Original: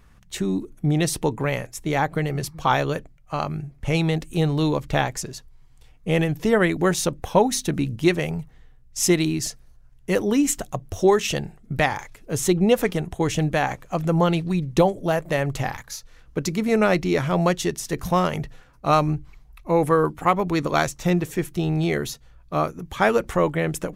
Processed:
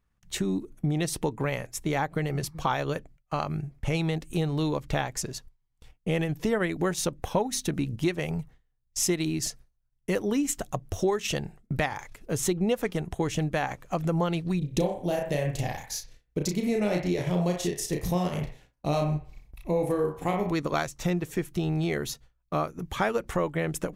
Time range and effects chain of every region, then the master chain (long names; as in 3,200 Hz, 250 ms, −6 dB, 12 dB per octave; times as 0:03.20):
0:14.58–0:20.52: parametric band 1,300 Hz −15 dB 1 octave + double-tracking delay 34 ms −3.5 dB + delay with a band-pass on its return 62 ms, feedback 35%, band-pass 1,200 Hz, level −3.5 dB
whole clip: noise gate with hold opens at −38 dBFS; downward compressor 2.5 to 1, threshold −26 dBFS; transient designer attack 0 dB, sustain −4 dB